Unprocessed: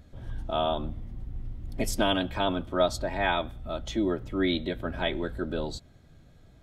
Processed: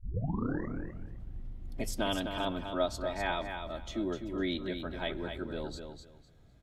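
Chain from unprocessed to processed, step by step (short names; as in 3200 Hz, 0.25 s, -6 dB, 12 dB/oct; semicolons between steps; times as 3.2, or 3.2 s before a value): tape start at the beginning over 1.19 s; feedback echo 0.253 s, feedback 21%, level -7 dB; gain -7 dB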